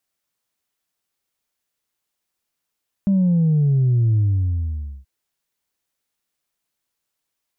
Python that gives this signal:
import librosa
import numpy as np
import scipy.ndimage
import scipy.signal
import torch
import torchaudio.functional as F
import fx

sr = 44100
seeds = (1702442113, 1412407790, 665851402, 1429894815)

y = fx.sub_drop(sr, level_db=-14.0, start_hz=200.0, length_s=1.98, drive_db=0.5, fade_s=0.88, end_hz=65.0)